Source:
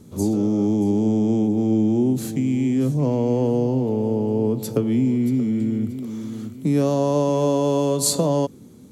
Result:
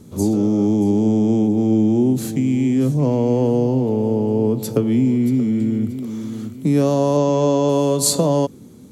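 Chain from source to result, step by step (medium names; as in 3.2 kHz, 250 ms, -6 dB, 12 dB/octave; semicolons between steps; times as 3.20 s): 7.17–7.69 s: steep low-pass 7.9 kHz 96 dB/octave; trim +3 dB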